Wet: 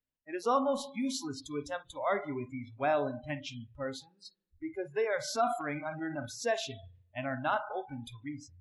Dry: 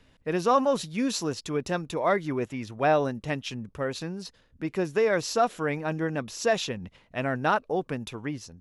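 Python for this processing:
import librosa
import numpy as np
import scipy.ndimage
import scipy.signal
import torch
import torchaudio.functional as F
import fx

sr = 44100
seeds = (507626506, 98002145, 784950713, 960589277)

y = fx.rev_spring(x, sr, rt60_s=1.0, pass_ms=(34, 56), chirp_ms=20, drr_db=8.5)
y = fx.noise_reduce_blind(y, sr, reduce_db=29)
y = fx.transient(y, sr, attack_db=1, sustain_db=7, at=(5.27, 6.46), fade=0.02)
y = y * 10.0 ** (-6.5 / 20.0)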